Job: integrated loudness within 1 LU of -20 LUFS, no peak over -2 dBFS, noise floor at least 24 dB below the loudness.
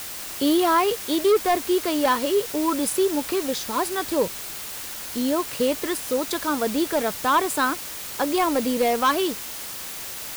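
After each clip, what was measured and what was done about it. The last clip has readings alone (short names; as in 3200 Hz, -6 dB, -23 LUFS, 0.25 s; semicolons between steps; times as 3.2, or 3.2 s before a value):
clipped 1.0%; flat tops at -14.0 dBFS; noise floor -35 dBFS; noise floor target -48 dBFS; loudness -23.5 LUFS; peak -14.0 dBFS; loudness target -20.0 LUFS
-> clip repair -14 dBFS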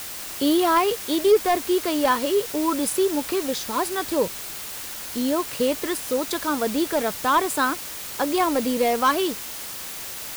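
clipped 0.0%; noise floor -35 dBFS; noise floor target -47 dBFS
-> denoiser 12 dB, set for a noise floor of -35 dBFS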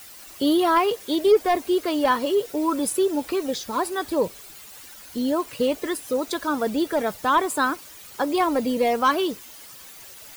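noise floor -44 dBFS; noise floor target -47 dBFS
-> denoiser 6 dB, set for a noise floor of -44 dBFS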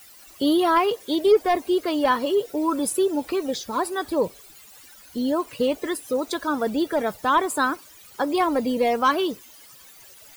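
noise floor -49 dBFS; loudness -23.0 LUFS; peak -7.5 dBFS; loudness target -20.0 LUFS
-> gain +3 dB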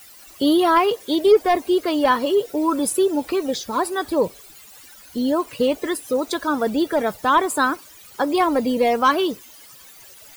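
loudness -20.0 LUFS; peak -4.5 dBFS; noise floor -46 dBFS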